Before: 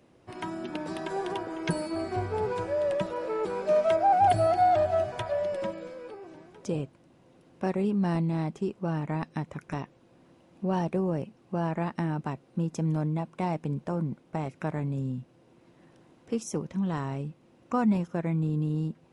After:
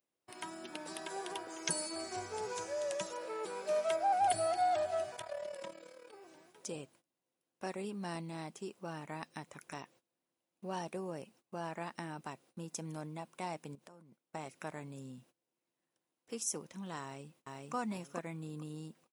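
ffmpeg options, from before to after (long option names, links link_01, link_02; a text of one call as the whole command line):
ffmpeg -i in.wav -filter_complex "[0:a]asettb=1/sr,asplit=3[link_01][link_02][link_03];[link_01]atrim=end=1.494[link_04];[link_02]atrim=start=1.49:end=3.17,asetpts=PTS-STARTPTS,afade=type=in:duration=0.004:curve=qsin,afade=type=out:start_time=1.676:duration=0.004:curve=qsin,equalizer=frequency=6300:width_type=o:width=0.55:gain=12[link_05];[link_03]atrim=start=3.166[link_06];[link_04][link_05]acrossfade=duration=0.004:curve1=hsin:curve2=qsin[link_07];[link_07][link_06]acrossfade=duration=0.004:curve1=qsin:curve2=hsin,asettb=1/sr,asplit=3[link_08][link_09][link_10];[link_08]atrim=end=5.164[link_11];[link_09]atrim=start=5.16:end=6.14,asetpts=PTS-STARTPTS,afade=type=in:duration=0.004:curve=qsin,afade=type=out:start_time=0.976:duration=0.004:curve=qsin,tremolo=f=37:d=0.75[link_12];[link_10]atrim=start=6.136[link_13];[link_11][link_12]acrossfade=duration=0.004:curve1=hsin:curve2=qsin[link_14];[link_14][link_13]acrossfade=duration=0.004:curve1=qsin:curve2=hsin,asettb=1/sr,asplit=3[link_15][link_16][link_17];[link_15]atrim=end=13.754[link_18];[link_16]atrim=start=13.75:end=14.24,asetpts=PTS-STARTPTS,afade=type=in:duration=0.004:curve=qsin,afade=type=out:start_time=0.486:duration=0.004:curve=qsin,acompressor=threshold=-42dB:ratio=8:attack=3.2:release=140:knee=1:detection=peak[link_19];[link_17]atrim=start=14.236[link_20];[link_18][link_19]acrossfade=duration=0.004:curve1=hsin:curve2=qsin[link_21];[link_21][link_20]acrossfade=duration=0.004:curve1=qsin:curve2=hsin,asplit=2[link_22][link_23];[link_23]afade=type=in:start_time=17.02:duration=0.01,afade=type=out:start_time=17.74:duration=0.01,aecho=0:1:440|880|1320:0.891251|0.17825|0.03565[link_24];[link_22][link_24]amix=inputs=2:normalize=0,aemphasis=mode=production:type=riaa,agate=range=-20dB:threshold=-55dB:ratio=16:detection=peak,volume=-8dB" out.wav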